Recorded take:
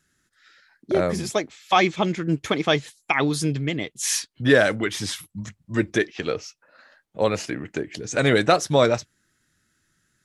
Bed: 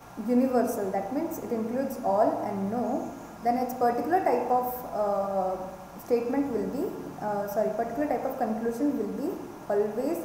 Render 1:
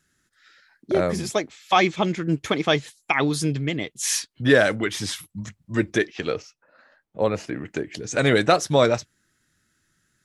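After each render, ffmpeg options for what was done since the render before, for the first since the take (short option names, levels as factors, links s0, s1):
-filter_complex "[0:a]asettb=1/sr,asplit=3[s0][s1][s2];[s0]atrim=end=6.424[s3];[s1]atrim=start=6.42:end=7.55,asetpts=PTS-STARTPTS,afade=t=in:d=0.004:c=qsin,afade=t=out:st=1.126:d=0.004:c=qsin,highshelf=f=2200:g=-9.5[s4];[s2]atrim=start=7.546[s5];[s3][s4]acrossfade=d=0.004:c1=hsin:c2=qsin[s6];[s6][s5]acrossfade=d=0.004:c1=qsin:c2=hsin"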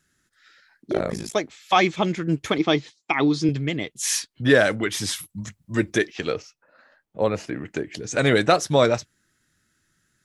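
-filter_complex "[0:a]asettb=1/sr,asplit=3[s0][s1][s2];[s0]atrim=end=0.934[s3];[s1]atrim=start=0.93:end=1.35,asetpts=PTS-STARTPTS,afade=t=in:d=0.004:c=qsin,afade=t=out:st=0.416:d=0.004:c=qsin,tremolo=f=54:d=0.974[s4];[s2]atrim=start=1.346[s5];[s3][s4]acrossfade=d=0.004:c1=hsin:c2=qsin[s6];[s6][s5]acrossfade=d=0.004:c1=qsin:c2=hsin,asettb=1/sr,asplit=3[s7][s8][s9];[s7]atrim=end=2.584[s10];[s8]atrim=start=2.58:end=3.49,asetpts=PTS-STARTPTS,afade=t=in:d=0.004:c=qsin,afade=t=out:st=0.906:d=0.004:c=qsin,highpass=120,equalizer=f=320:t=q:w=4:g=7,equalizer=f=560:t=q:w=4:g=-4,equalizer=f=1600:t=q:w=4:g=-6,equalizer=f=2800:t=q:w=4:g=-3,lowpass=f=5800:w=0.5412,lowpass=f=5800:w=1.3066[s11];[s9]atrim=start=3.486[s12];[s10][s11]acrossfade=d=0.004:c1=hsin:c2=qsin[s13];[s13][s12]acrossfade=d=0.004:c1=qsin:c2=hsin,asettb=1/sr,asplit=3[s14][s15][s16];[s14]atrim=end=4.924[s17];[s15]atrim=start=4.92:end=6.33,asetpts=PTS-STARTPTS,afade=t=in:d=0.004:c=qsin,afade=t=out:st=1.406:d=0.004:c=qsin,highshelf=f=6900:g=7[s18];[s16]atrim=start=6.326[s19];[s17][s18]acrossfade=d=0.004:c1=hsin:c2=qsin[s20];[s20][s19]acrossfade=d=0.004:c1=qsin:c2=hsin"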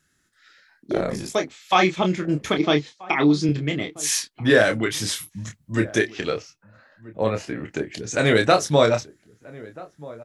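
-filter_complex "[0:a]asplit=2[s0][s1];[s1]adelay=27,volume=0.501[s2];[s0][s2]amix=inputs=2:normalize=0,asplit=2[s3][s4];[s4]adelay=1283,volume=0.1,highshelf=f=4000:g=-28.9[s5];[s3][s5]amix=inputs=2:normalize=0"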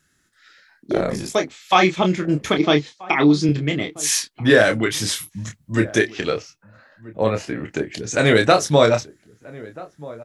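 -af "volume=1.41,alimiter=limit=0.794:level=0:latency=1"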